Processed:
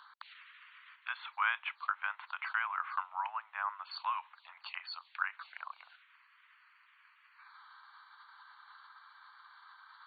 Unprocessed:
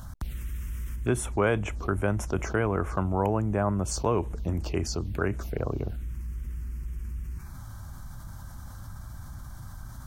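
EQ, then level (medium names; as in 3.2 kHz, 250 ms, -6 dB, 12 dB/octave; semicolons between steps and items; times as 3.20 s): steep high-pass 970 Hz 48 dB/octave; brick-wall FIR low-pass 4.6 kHz; 0.0 dB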